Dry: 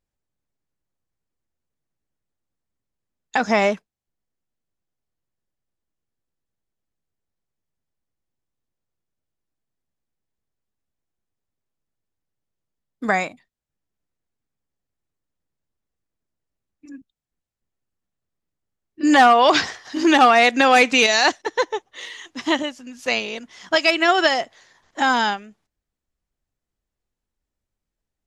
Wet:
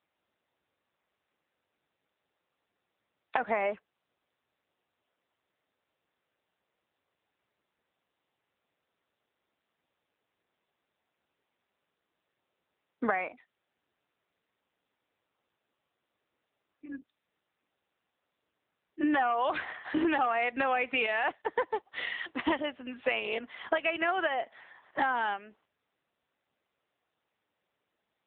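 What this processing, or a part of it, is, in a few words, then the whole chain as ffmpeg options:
voicemail: -af "highpass=380,lowpass=2800,acompressor=threshold=-30dB:ratio=8,volume=4.5dB" -ar 8000 -c:a libopencore_amrnb -b:a 7950

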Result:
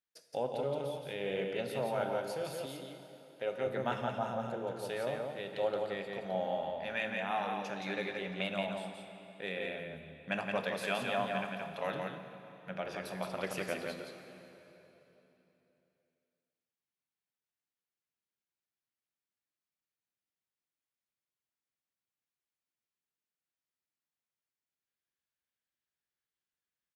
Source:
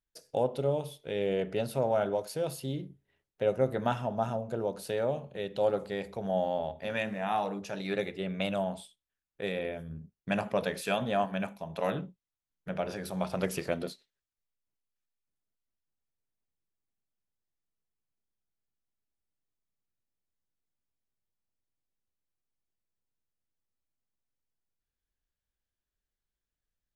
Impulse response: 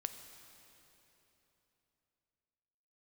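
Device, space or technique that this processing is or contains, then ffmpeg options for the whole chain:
PA in a hall: -filter_complex "[0:a]highpass=120,equalizer=frequency=2100:width_type=o:width=2.3:gain=7.5,aecho=1:1:172:0.631[link_01];[1:a]atrim=start_sample=2205[link_02];[link_01][link_02]afir=irnorm=-1:irlink=0,asettb=1/sr,asplit=3[link_03][link_04][link_05];[link_03]atrim=end=2.664[link_06];[link_04]atrim=start=2.66:end=3.67,asetpts=PTS-STARTPTS,afade=type=in:duration=0.004:curve=qsin,afade=type=out:start_time=1.006:duration=0.004:curve=qsin,lowshelf=frequency=190:gain=-11.5[link_07];[link_05]atrim=start=3.666[link_08];[link_06][link_07]acrossfade=duration=0.004:curve1=hsin:curve2=qsin[link_09];[link_09][link_08]acrossfade=duration=0.004:curve1=qsin:curve2=hsin,volume=-6.5dB"

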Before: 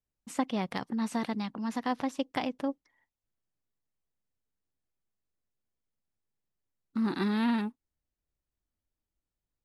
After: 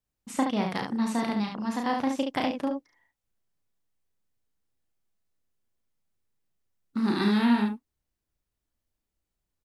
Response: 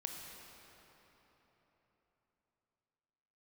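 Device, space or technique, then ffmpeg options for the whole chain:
slapback doubling: -filter_complex "[0:a]asettb=1/sr,asplit=3[link_01][link_02][link_03];[link_01]atrim=end=6.974[link_04];[link_02]atrim=start=6.97:end=7.38,asetpts=PTS-STARTPTS,afade=type=in:duration=0.004:curve=qsin,afade=type=out:start_time=0.406:duration=0.004:curve=qsin,equalizer=frequency=6200:width_type=o:width=1.8:gain=5.5[link_05];[link_03]atrim=start=7.376[link_06];[link_04][link_05]acrossfade=duration=0.004:curve1=hsin:curve2=qsin[link_07];[link_07][link_06]acrossfade=duration=0.004:curve1=qsin:curve2=hsin,asplit=3[link_08][link_09][link_10];[link_09]adelay=34,volume=-5dB[link_11];[link_10]adelay=71,volume=-5dB[link_12];[link_08][link_11][link_12]amix=inputs=3:normalize=0,volume=2.5dB"

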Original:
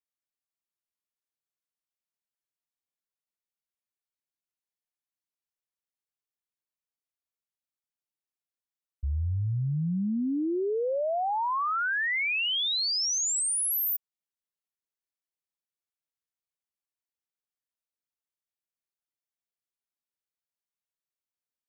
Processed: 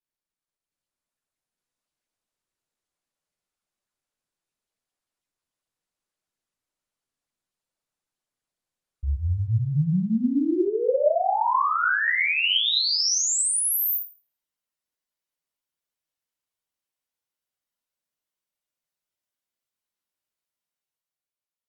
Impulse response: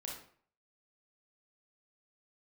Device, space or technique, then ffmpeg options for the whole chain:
speakerphone in a meeting room: -filter_complex "[1:a]atrim=start_sample=2205[link_01];[0:a][link_01]afir=irnorm=-1:irlink=0,dynaudnorm=framelen=100:gausssize=17:maxgain=7dB" -ar 48000 -c:a libopus -b:a 32k

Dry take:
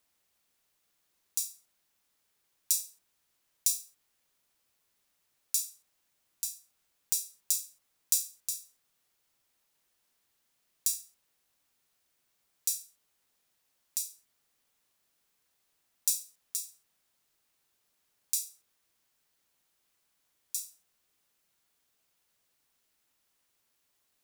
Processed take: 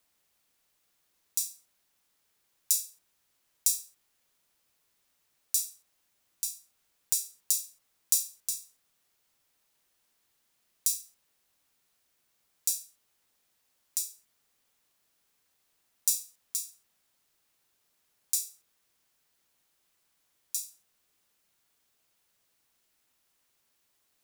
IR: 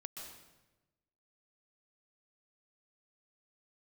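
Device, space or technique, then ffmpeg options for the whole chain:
one-band saturation: -filter_complex "[0:a]acrossover=split=320|4400[link_01][link_02][link_03];[link_02]asoftclip=type=tanh:threshold=-39dB[link_04];[link_01][link_04][link_03]amix=inputs=3:normalize=0,volume=2dB"

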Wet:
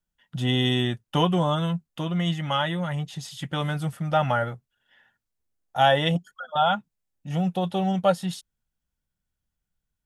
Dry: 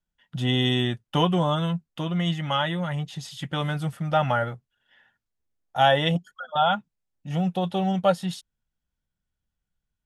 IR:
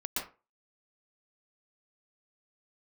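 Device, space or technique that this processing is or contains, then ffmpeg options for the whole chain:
exciter from parts: -filter_complex "[0:a]asplit=2[link_01][link_02];[link_02]highpass=5000,asoftclip=type=tanh:threshold=-35.5dB,volume=-7dB[link_03];[link_01][link_03]amix=inputs=2:normalize=0"

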